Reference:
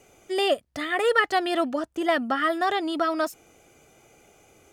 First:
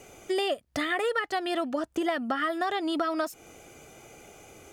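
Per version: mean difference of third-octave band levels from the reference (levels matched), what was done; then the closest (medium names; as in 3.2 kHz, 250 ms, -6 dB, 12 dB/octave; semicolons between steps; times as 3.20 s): 5.0 dB: compression 6:1, threshold -32 dBFS, peak gain reduction 16 dB; trim +6 dB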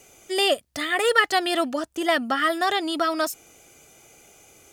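3.0 dB: treble shelf 2.9 kHz +10.5 dB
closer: second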